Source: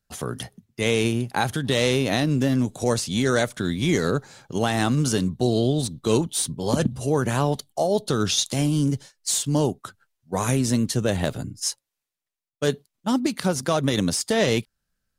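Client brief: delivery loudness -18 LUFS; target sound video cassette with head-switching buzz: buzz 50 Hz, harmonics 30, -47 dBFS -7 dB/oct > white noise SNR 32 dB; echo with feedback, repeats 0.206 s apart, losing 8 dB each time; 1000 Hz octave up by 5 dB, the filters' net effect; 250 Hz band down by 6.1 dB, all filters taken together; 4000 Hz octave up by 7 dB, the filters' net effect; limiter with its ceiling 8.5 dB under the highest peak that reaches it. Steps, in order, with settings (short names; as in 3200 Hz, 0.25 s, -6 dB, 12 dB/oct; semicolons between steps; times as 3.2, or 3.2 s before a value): bell 250 Hz -8.5 dB; bell 1000 Hz +7 dB; bell 4000 Hz +8 dB; limiter -11.5 dBFS; feedback echo 0.206 s, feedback 40%, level -8 dB; buzz 50 Hz, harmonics 30, -47 dBFS -7 dB/oct; white noise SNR 32 dB; gain +6 dB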